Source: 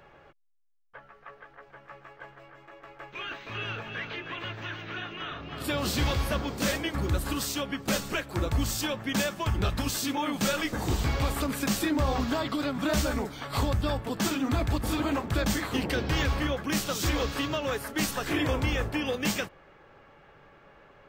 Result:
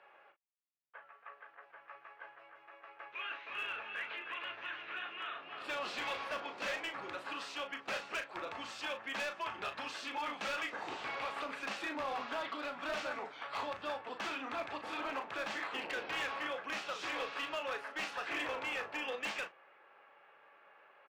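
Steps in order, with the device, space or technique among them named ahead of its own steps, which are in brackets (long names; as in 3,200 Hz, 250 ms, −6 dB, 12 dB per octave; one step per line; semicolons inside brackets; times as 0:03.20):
megaphone (band-pass filter 680–2,700 Hz; parametric band 2,600 Hz +5 dB 0.22 octaves; hard clipping −28.5 dBFS, distortion −16 dB; double-tracking delay 37 ms −8.5 dB)
level −4.5 dB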